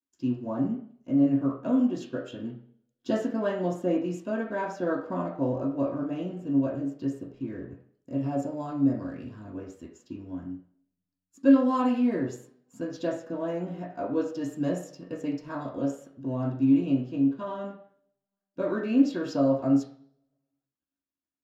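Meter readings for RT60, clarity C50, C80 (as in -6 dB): 0.55 s, 7.0 dB, 10.5 dB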